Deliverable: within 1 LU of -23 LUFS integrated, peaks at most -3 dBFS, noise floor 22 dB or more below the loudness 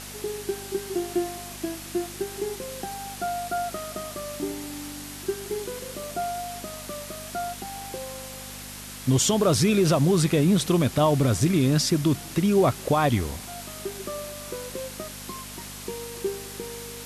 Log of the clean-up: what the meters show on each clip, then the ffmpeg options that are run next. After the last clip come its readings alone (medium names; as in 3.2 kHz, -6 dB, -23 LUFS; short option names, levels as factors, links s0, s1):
hum 50 Hz; highest harmonic 250 Hz; hum level -44 dBFS; noise floor -39 dBFS; noise floor target -49 dBFS; loudness -26.5 LUFS; peak level -11.0 dBFS; loudness target -23.0 LUFS
-> -af "bandreject=f=50:t=h:w=4,bandreject=f=100:t=h:w=4,bandreject=f=150:t=h:w=4,bandreject=f=200:t=h:w=4,bandreject=f=250:t=h:w=4"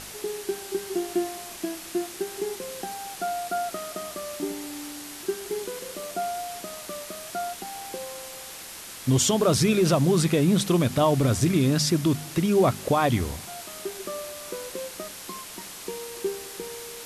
hum not found; noise floor -41 dBFS; noise floor target -49 dBFS
-> -af "afftdn=nr=8:nf=-41"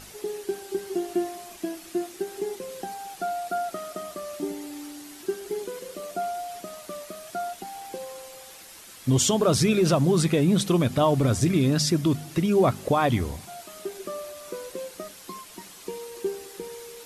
noise floor -46 dBFS; noise floor target -48 dBFS
-> -af "afftdn=nr=6:nf=-46"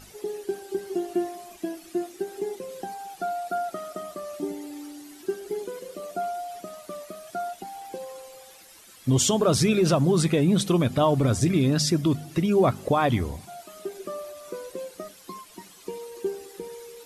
noise floor -50 dBFS; loudness -26.0 LUFS; peak level -10.5 dBFS; loudness target -23.0 LUFS
-> -af "volume=1.41"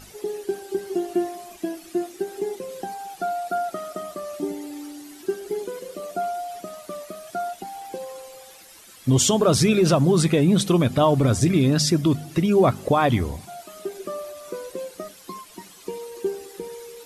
loudness -23.0 LUFS; peak level -7.5 dBFS; noise floor -47 dBFS